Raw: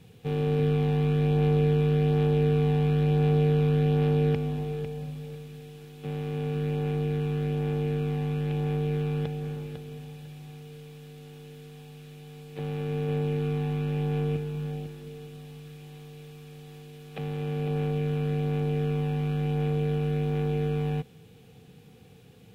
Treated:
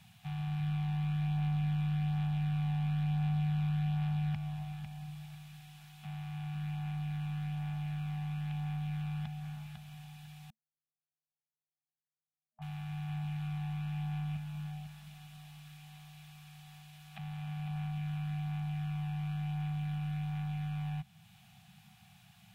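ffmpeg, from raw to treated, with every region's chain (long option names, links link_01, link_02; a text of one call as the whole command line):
ffmpeg -i in.wav -filter_complex "[0:a]asettb=1/sr,asplit=3[link_01][link_02][link_03];[link_01]atrim=end=10.504[link_04];[link_02]atrim=start=10.5:end=12.62,asetpts=PTS-STARTPTS,afade=type=in:duration=0.004:curve=qsin,afade=type=out:start_time=2.116:duration=0.004:curve=qsin,agate=range=-58dB:threshold=-33dB:ratio=16:release=100:detection=peak,lowpass=frequency=950:width_type=q:width=2.4[link_05];[link_03]atrim=start=12.616[link_06];[link_04][link_05]acrossfade=duration=0.004:curve1=hsin:curve2=qsin[link_07];[link_07][link_06]acrossfade=duration=0.004:curve1=qsin:curve2=hsin,afftfilt=real='re*(1-between(b*sr/4096,220,630))':imag='im*(1-between(b*sr/4096,220,630))':win_size=4096:overlap=0.75,lowshelf=frequency=310:gain=-9,acrossover=split=250[link_08][link_09];[link_09]acompressor=threshold=-60dB:ratio=1.5[link_10];[link_08][link_10]amix=inputs=2:normalize=0" out.wav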